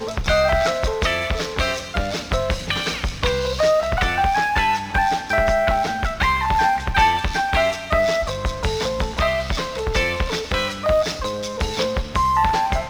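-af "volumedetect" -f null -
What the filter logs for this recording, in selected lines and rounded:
mean_volume: -20.5 dB
max_volume: -4.4 dB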